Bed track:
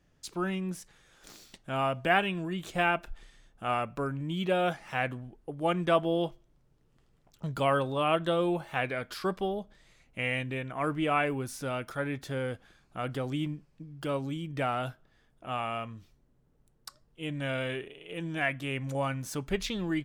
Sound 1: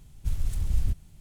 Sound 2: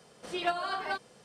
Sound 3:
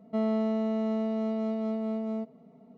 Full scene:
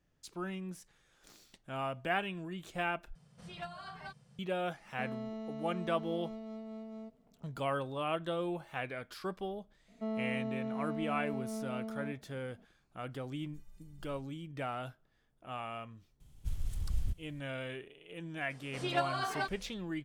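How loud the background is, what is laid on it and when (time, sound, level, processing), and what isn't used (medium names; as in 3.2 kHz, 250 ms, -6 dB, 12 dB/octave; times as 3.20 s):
bed track -8 dB
3.15 s: replace with 2 -13 dB + resonant low shelf 220 Hz +12.5 dB, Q 3
4.85 s: add 3 -14 dB + treble shelf 2.9 kHz +9.5 dB
9.88 s: add 3 -9 dB
13.28 s: add 1 -11.5 dB + inharmonic resonator 180 Hz, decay 0.39 s, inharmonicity 0.03
16.20 s: add 1 -8.5 dB + peaking EQ 3.2 kHz +4 dB 0.24 oct
18.50 s: add 2 -2 dB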